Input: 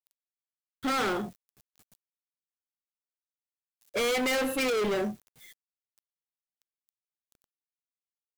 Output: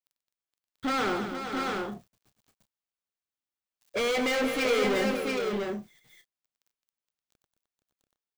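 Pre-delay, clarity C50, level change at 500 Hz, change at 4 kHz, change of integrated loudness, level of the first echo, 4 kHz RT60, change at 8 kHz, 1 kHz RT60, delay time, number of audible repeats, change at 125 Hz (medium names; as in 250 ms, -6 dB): no reverb, no reverb, +2.5 dB, +1.5 dB, 0.0 dB, -14.0 dB, no reverb, -2.0 dB, no reverb, 94 ms, 6, +3.0 dB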